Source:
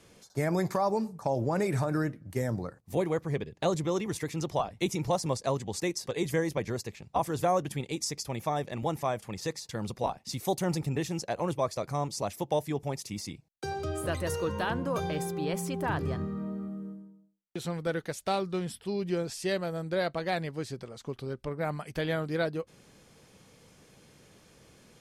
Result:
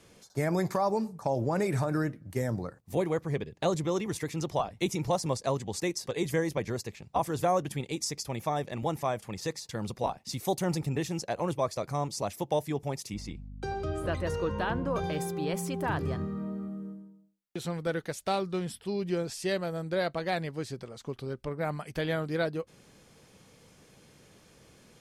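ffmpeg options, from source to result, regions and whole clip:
ffmpeg -i in.wav -filter_complex "[0:a]asettb=1/sr,asplit=3[link_01][link_02][link_03];[link_01]atrim=end=13.144[link_04];[link_02]atrim=start=13.14:end=15.04,asetpts=PTS-STARTPTS,afade=type=in:duration=0.004:curve=qsin,afade=type=out:start_time=1.896:duration=0.004:curve=qsin,aemphasis=mode=reproduction:type=50fm,aeval=exprs='val(0)+0.00794*(sin(2*PI*50*n/s)+sin(2*PI*2*50*n/s)/2+sin(2*PI*3*50*n/s)/3+sin(2*PI*4*50*n/s)/4+sin(2*PI*5*50*n/s)/5)':channel_layout=same[link_05];[link_03]atrim=start=15.036[link_06];[link_04][link_05]acrossfade=duration=0.004:curve1=hsin:curve2=qsin[link_07];[link_07][link_06]acrossfade=duration=0.004:curve1=qsin:curve2=hsin" out.wav

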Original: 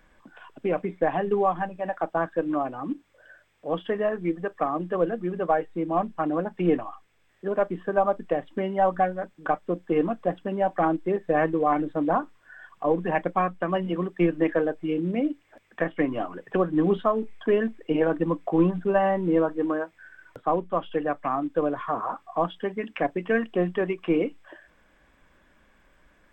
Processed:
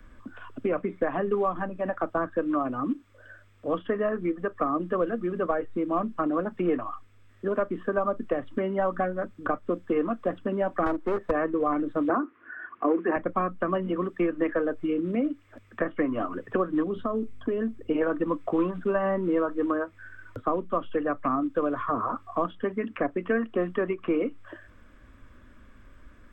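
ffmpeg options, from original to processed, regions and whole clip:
ffmpeg -i in.wav -filter_complex "[0:a]asettb=1/sr,asplit=3[link_01][link_02][link_03];[link_01]atrim=end=10.864[link_04];[link_02]atrim=start=10.86:end=11.31,asetpts=PTS-STARTPTS,afade=type=in:duration=0.004:curve=qsin,afade=type=out:start_time=0.446:duration=0.004:curve=qsin,equalizer=frequency=750:width=1.2:gain=8,aeval=exprs='clip(val(0),-1,0.0355)':channel_layout=same[link_05];[link_03]atrim=start=11.306[link_06];[link_04][link_05]acrossfade=duration=0.004:curve1=hsin:curve2=qsin[link_07];[link_07][link_06]acrossfade=duration=0.004:curve1=qsin:curve2=hsin,asettb=1/sr,asplit=3[link_08][link_09][link_10];[link_08]atrim=end=12.094[link_11];[link_09]atrim=start=12.09:end=13.16,asetpts=PTS-STARTPTS,afade=type=in:duration=0.004:curve=qsin,afade=type=out:start_time=1.066:duration=0.004:curve=qsin,acontrast=31,highpass=frequency=200:width=0.5412,highpass=frequency=200:width=1.3066,equalizer=frequency=200:width_type=q:width=4:gain=-10,equalizer=frequency=340:width_type=q:width=4:gain=7,equalizer=frequency=570:width_type=q:width=4:gain=-6,equalizer=frequency=950:width_type=q:width=4:gain=-4,lowpass=frequency=2400:width=0.5412,lowpass=frequency=2400:width=1.3066[link_12];[link_10]atrim=start=13.156[link_13];[link_11][link_12]acrossfade=duration=0.004:curve1=hsin:curve2=qsin[link_14];[link_14][link_13]acrossfade=duration=0.004:curve1=qsin:curve2=hsin,asettb=1/sr,asplit=3[link_15][link_16][link_17];[link_15]atrim=end=16.834[link_18];[link_16]atrim=start=16.83:end=17.9,asetpts=PTS-STARTPTS,afade=type=in:duration=0.004:curve=qsin,afade=type=out:start_time=1.066:duration=0.004:curve=qsin,acompressor=threshold=-23dB:ratio=4:attack=3.2:release=140:knee=1:detection=peak,equalizer=frequency=1800:width_type=o:width=2.4:gain=-7.5,aeval=exprs='val(0)+0.001*(sin(2*PI*50*n/s)+sin(2*PI*2*50*n/s)/2+sin(2*PI*3*50*n/s)/3+sin(2*PI*4*50*n/s)/4+sin(2*PI*5*50*n/s)/5)':channel_layout=same[link_19];[link_17]atrim=start=17.896[link_20];[link_18][link_19]acrossfade=duration=0.004:curve1=hsin:curve2=qsin[link_21];[link_21][link_20]acrossfade=duration=0.004:curve1=qsin:curve2=hsin,equalizer=frequency=100:width_type=o:width=0.33:gain=9,equalizer=frequency=160:width_type=o:width=0.33:gain=-12,equalizer=frequency=250:width_type=o:width=0.33:gain=6,equalizer=frequency=800:width_type=o:width=0.33:gain=-8,equalizer=frequency=1250:width_type=o:width=0.33:gain=8,acrossover=split=220|510|1100|2200[link_22][link_23][link_24][link_25][link_26];[link_22]acompressor=threshold=-47dB:ratio=4[link_27];[link_23]acompressor=threshold=-36dB:ratio=4[link_28];[link_24]acompressor=threshold=-30dB:ratio=4[link_29];[link_25]acompressor=threshold=-35dB:ratio=4[link_30];[link_26]acompressor=threshold=-56dB:ratio=4[link_31];[link_27][link_28][link_29][link_30][link_31]amix=inputs=5:normalize=0,lowshelf=frequency=290:gain=12" out.wav

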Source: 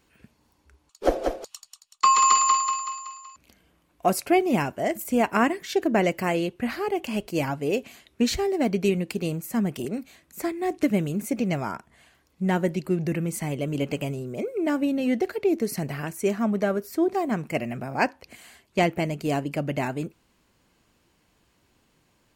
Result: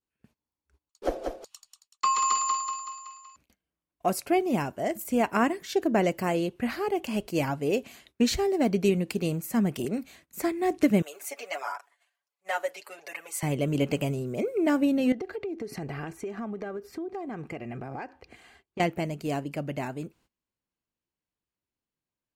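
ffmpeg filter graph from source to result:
ffmpeg -i in.wav -filter_complex "[0:a]asettb=1/sr,asplit=3[link_01][link_02][link_03];[link_01]atrim=end=11.024[link_04];[link_02]atrim=start=11.02:end=13.43,asetpts=PTS-STARTPTS,afade=type=in:duration=0.004:curve=qsin,afade=type=out:start_time=2.406:duration=0.004:curve=qsin,highpass=frequency=600:width=0.5412,highpass=frequency=600:width=1.3066,aecho=1:1:7:0.9,atrim=end_sample=106281,flanger=delay=0.8:depth=4.4:regen=44:speed=1.4:shape=triangular[link_05];[link_03]atrim=start=13.426[link_06];[link_04][link_05]acrossfade=duration=0.004:curve1=hsin:curve2=qsin[link_07];[link_07][link_06]acrossfade=duration=0.004:curve1=qsin:curve2=hsin,asettb=1/sr,asplit=3[link_08][link_09][link_10];[link_08]atrim=end=15.124[link_11];[link_09]atrim=start=15.12:end=18.8,asetpts=PTS-STARTPTS,afade=type=in:duration=0.004:curve=qsin,afade=type=out:start_time=3.676:duration=0.004:curve=qsin,aemphasis=mode=reproduction:type=75fm,aecho=1:1:2.5:0.4,atrim=end_sample=162288,acompressor=threshold=-31dB:ratio=10:attack=3.2:release=140:knee=1:detection=peak[link_12];[link_10]atrim=start=18.796[link_13];[link_11][link_12]acrossfade=duration=0.004:curve1=hsin:curve2=qsin[link_14];[link_14][link_13]acrossfade=duration=0.004:curve1=qsin:curve2=hsin,agate=range=-21dB:threshold=-55dB:ratio=16:detection=peak,adynamicequalizer=threshold=0.00891:dfrequency=2200:dqfactor=1.4:tfrequency=2200:tqfactor=1.4:attack=5:release=100:ratio=0.375:range=3:mode=cutabove:tftype=bell,dynaudnorm=framelen=520:gausssize=17:maxgain=11.5dB,volume=-7dB" out.wav

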